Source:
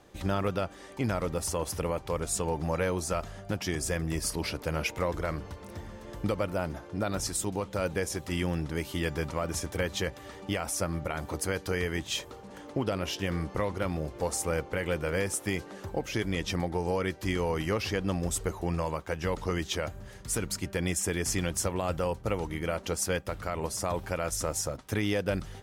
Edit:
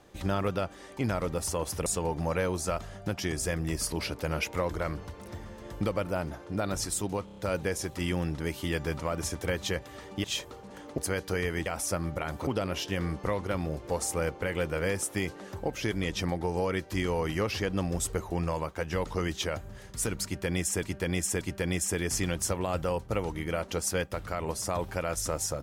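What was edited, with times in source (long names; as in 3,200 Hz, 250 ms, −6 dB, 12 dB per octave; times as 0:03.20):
0:01.86–0:02.29: remove
0:07.68: stutter 0.03 s, 5 plays
0:10.55–0:11.36: swap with 0:12.04–0:12.78
0:20.56–0:21.14: repeat, 3 plays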